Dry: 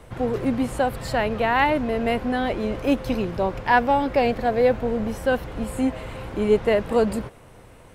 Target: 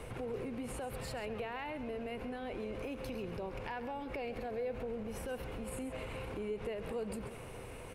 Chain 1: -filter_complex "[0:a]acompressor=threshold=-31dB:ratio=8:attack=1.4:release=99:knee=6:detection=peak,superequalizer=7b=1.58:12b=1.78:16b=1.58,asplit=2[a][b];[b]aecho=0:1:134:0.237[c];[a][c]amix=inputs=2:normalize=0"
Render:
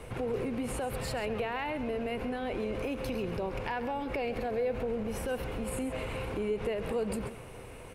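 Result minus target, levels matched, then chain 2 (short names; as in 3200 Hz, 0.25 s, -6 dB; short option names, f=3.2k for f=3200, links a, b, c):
compressor: peak gain reduction -7 dB
-filter_complex "[0:a]acompressor=threshold=-39dB:ratio=8:attack=1.4:release=99:knee=6:detection=peak,superequalizer=7b=1.58:12b=1.78:16b=1.58,asplit=2[a][b];[b]aecho=0:1:134:0.237[c];[a][c]amix=inputs=2:normalize=0"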